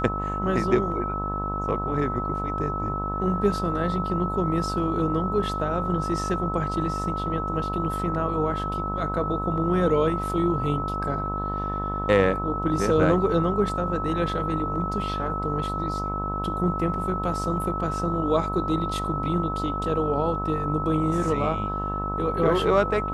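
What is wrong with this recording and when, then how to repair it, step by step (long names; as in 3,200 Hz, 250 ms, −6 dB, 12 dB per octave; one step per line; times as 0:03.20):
mains buzz 50 Hz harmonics 27 −31 dBFS
whistle 1,300 Hz −29 dBFS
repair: hum removal 50 Hz, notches 27
notch filter 1,300 Hz, Q 30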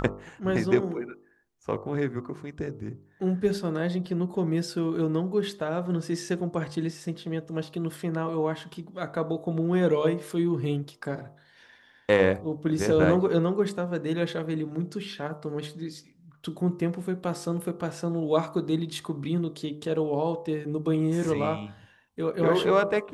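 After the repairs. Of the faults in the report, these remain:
none of them is left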